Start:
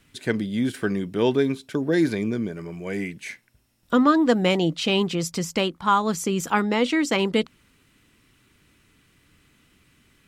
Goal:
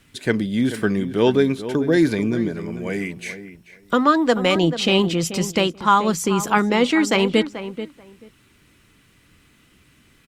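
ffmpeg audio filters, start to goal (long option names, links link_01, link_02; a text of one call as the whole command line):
ffmpeg -i in.wav -filter_complex "[0:a]asettb=1/sr,asplit=3[link_01][link_02][link_03];[link_01]atrim=end=2.894[link_04];[link_02]atrim=start=2.89:end=4.56,asetpts=PTS-STARTPTS,afade=type=in:duration=0.004:curve=qsin,afade=type=out:start_time=1.666:duration=0.004:curve=qsin,acrossover=split=420[link_05][link_06];[link_05]acompressor=threshold=-31dB:ratio=2[link_07];[link_07][link_06]amix=inputs=2:normalize=0[link_08];[link_03]atrim=start=4.556[link_09];[link_04][link_08]acrossfade=duration=0.004:curve1=hsin:curve2=qsin[link_10];[link_10][link_09]acrossfade=duration=0.004:curve1=qsin:curve2=hsin,asplit=2[link_11][link_12];[link_12]adelay=435,lowpass=frequency=1900:poles=1,volume=-11.5dB,asplit=2[link_13][link_14];[link_14]adelay=435,lowpass=frequency=1900:poles=1,volume=0.17[link_15];[link_11][link_13][link_15]amix=inputs=3:normalize=0,volume=4dB" -ar 48000 -c:a libopus -b:a 64k out.opus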